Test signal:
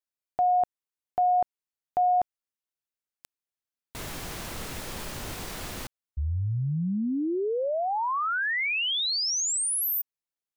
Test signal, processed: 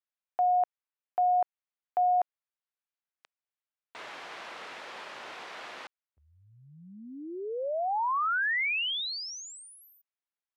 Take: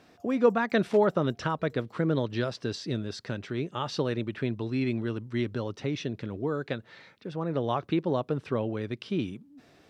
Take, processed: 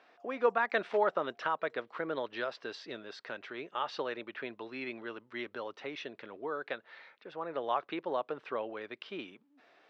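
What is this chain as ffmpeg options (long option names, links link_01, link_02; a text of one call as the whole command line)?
ffmpeg -i in.wav -af "highpass=640,lowpass=2900" out.wav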